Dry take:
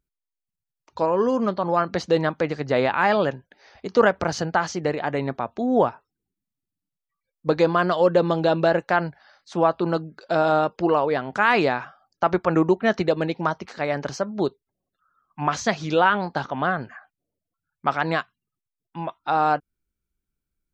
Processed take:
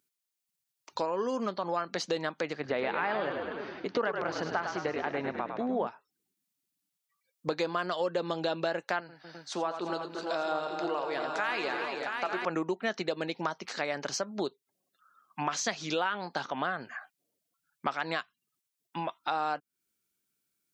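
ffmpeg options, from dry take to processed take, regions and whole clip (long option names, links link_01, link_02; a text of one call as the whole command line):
ffmpeg -i in.wav -filter_complex "[0:a]asettb=1/sr,asplit=3[link_01][link_02][link_03];[link_01]atrim=end=2.534[link_04];[link_02]atrim=start=2.53:end=5.87,asetpts=PTS-STARTPTS,afade=type=in:duration=0.004:curve=qsin,afade=type=out:start_time=3.336:duration=0.004:curve=qsin,lowpass=2700,asplit=8[link_05][link_06][link_07][link_08][link_09][link_10][link_11][link_12];[link_06]adelay=103,afreqshift=-44,volume=-7dB[link_13];[link_07]adelay=206,afreqshift=-88,volume=-11.7dB[link_14];[link_08]adelay=309,afreqshift=-132,volume=-16.5dB[link_15];[link_09]adelay=412,afreqshift=-176,volume=-21.2dB[link_16];[link_10]adelay=515,afreqshift=-220,volume=-25.9dB[link_17];[link_11]adelay=618,afreqshift=-264,volume=-30.7dB[link_18];[link_12]adelay=721,afreqshift=-308,volume=-35.4dB[link_19];[link_05][link_13][link_14][link_15][link_16][link_17][link_18][link_19]amix=inputs=8:normalize=0,atrim=end_sample=147294[link_20];[link_03]atrim=start=5.866[link_21];[link_04][link_20]acrossfade=duration=0.004:curve1=hsin:curve2=qsin[link_22];[link_22][link_21]acrossfade=duration=0.004:curve1=qsin:curve2=hsin,asettb=1/sr,asplit=3[link_23][link_24][link_25];[link_23]atrim=end=9.004[link_26];[link_24]atrim=start=9:end=12.45,asetpts=PTS-STARTPTS,afade=type=in:duration=0.004:curve=qsin,afade=type=out:start_time=3.446:duration=0.004:curve=qsin,flanger=delay=6.3:depth=2.5:regen=79:speed=1.3:shape=triangular,equalizer=frequency=83:width_type=o:width=1.5:gain=-12.5,aecho=1:1:86|238|342|673|898:0.355|0.251|0.266|0.282|0.398,atrim=end_sample=152145[link_27];[link_25]atrim=start=12.446[link_28];[link_26][link_27]acrossfade=duration=0.004:curve1=hsin:curve2=qsin[link_29];[link_29][link_28]acrossfade=duration=0.004:curve1=qsin:curve2=hsin,highpass=200,highshelf=frequency=2100:gain=10.5,acompressor=threshold=-32dB:ratio=3" out.wav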